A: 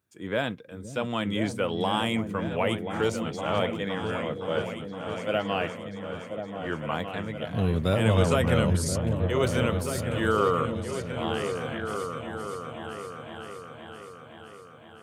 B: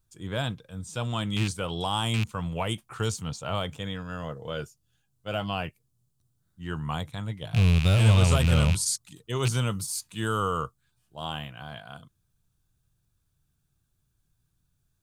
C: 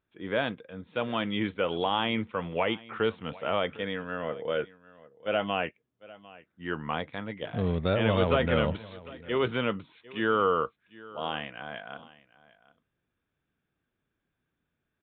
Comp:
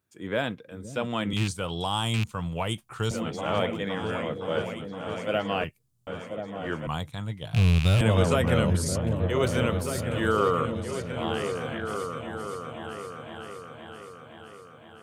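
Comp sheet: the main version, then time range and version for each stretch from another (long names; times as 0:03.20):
A
0:01.33–0:03.11: punch in from B
0:05.64–0:06.07: punch in from B
0:06.87–0:08.01: punch in from B
not used: C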